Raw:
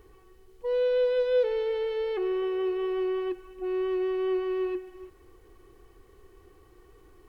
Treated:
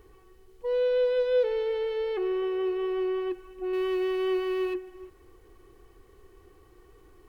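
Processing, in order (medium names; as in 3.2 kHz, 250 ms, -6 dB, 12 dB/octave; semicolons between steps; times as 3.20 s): 3.73–4.74 s: treble shelf 2.3 kHz +11.5 dB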